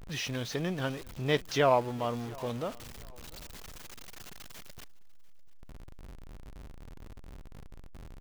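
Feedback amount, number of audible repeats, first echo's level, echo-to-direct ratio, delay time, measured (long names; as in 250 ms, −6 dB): 28%, 2, −23.5 dB, −23.0 dB, 695 ms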